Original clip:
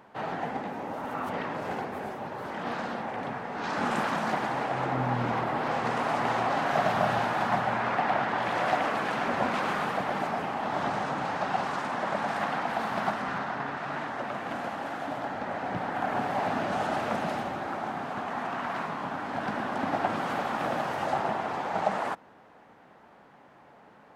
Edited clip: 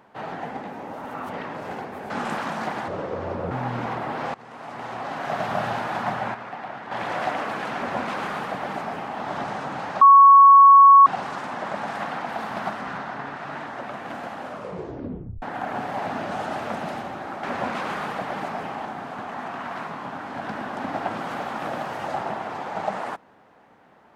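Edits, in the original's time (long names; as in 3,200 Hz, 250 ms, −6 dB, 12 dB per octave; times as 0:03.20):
0:02.10–0:03.76: remove
0:04.54–0:04.97: play speed 68%
0:05.80–0:07.06: fade in, from −20.5 dB
0:07.80–0:08.37: clip gain −8.5 dB
0:09.22–0:10.64: duplicate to 0:17.84
0:11.47: insert tone 1,110 Hz −7 dBFS 1.05 s
0:14.79: tape stop 1.04 s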